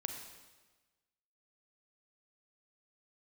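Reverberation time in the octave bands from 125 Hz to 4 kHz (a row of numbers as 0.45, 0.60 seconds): 1.3, 1.3, 1.3, 1.2, 1.2, 1.2 seconds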